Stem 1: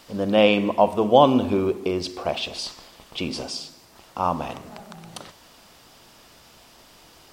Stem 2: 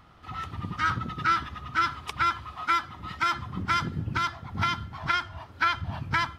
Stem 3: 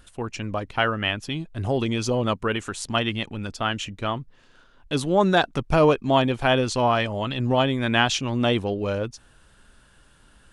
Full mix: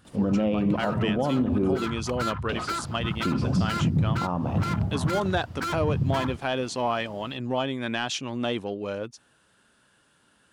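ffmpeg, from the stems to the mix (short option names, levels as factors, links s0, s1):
-filter_complex "[0:a]highshelf=f=3200:g=-11,adelay=50,volume=0.668,asplit=3[s0][s1][s2];[s0]atrim=end=1.85,asetpts=PTS-STARTPTS,afade=t=out:st=1.846:d=0.004:c=hsin[s3];[s1]atrim=start=1.85:end=2.49,asetpts=PTS-STARTPTS,volume=0[s4];[s2]atrim=start=2.49,asetpts=PTS-STARTPTS,afade=t=in:d=0.004:c=hsin[s5];[s3][s4][s5]concat=n=3:v=0:a=1[s6];[1:a]afwtdn=0.0178,asoftclip=type=hard:threshold=0.0299,volume=1.12[s7];[2:a]highpass=150,acontrast=39,volume=0.299[s8];[s6][s7]amix=inputs=2:normalize=0,equalizer=f=160:w=0.5:g=14,alimiter=limit=0.224:level=0:latency=1:release=227,volume=1[s9];[s8][s9]amix=inputs=2:normalize=0,alimiter=limit=0.168:level=0:latency=1:release=92"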